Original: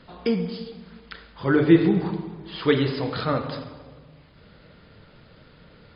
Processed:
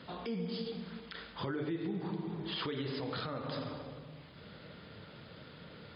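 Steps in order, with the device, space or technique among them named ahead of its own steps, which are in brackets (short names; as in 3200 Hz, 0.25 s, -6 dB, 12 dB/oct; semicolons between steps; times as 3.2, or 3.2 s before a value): broadcast voice chain (HPF 94 Hz 12 dB/oct; de-esser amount 70%; compressor 5:1, threshold -33 dBFS, peak gain reduction 20.5 dB; bell 3400 Hz +3.5 dB 0.34 oct; limiter -28.5 dBFS, peak gain reduction 10 dB)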